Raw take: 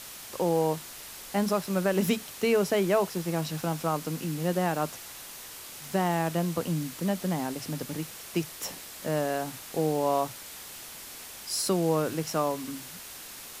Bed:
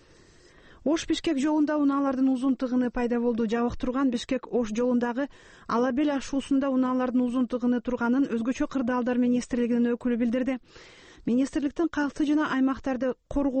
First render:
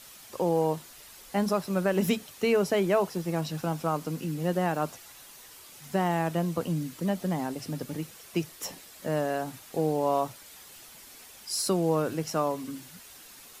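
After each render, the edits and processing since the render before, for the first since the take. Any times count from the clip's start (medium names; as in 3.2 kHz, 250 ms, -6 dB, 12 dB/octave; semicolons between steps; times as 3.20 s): noise reduction 8 dB, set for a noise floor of -44 dBFS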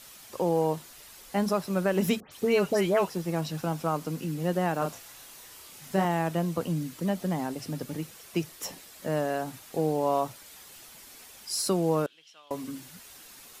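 2.20–3.08 s: phase dispersion highs, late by 119 ms, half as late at 2.5 kHz; 4.78–6.05 s: doubling 31 ms -5 dB; 12.06–12.51 s: band-pass filter 3.2 kHz, Q 7.2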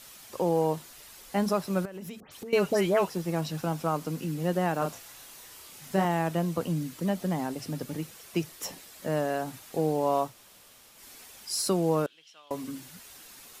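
1.85–2.53 s: compression 20:1, threshold -36 dBFS; 10.30–10.97 s: room tone, crossfade 0.16 s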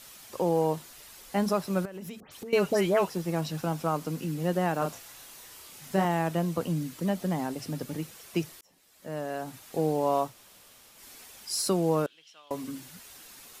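8.61–9.82 s: fade in linear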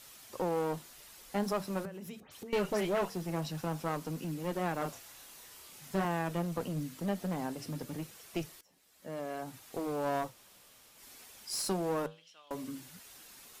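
flange 0.21 Hz, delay 2.1 ms, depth 8.1 ms, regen -82%; one-sided clip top -33.5 dBFS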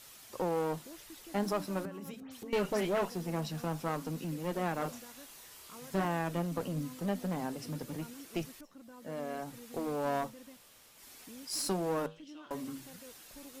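add bed -26.5 dB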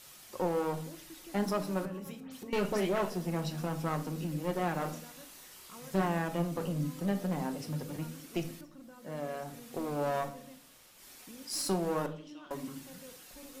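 simulated room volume 700 m³, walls furnished, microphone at 0.97 m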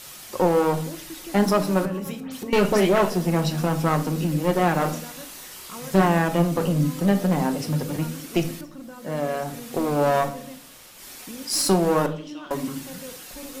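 trim +12 dB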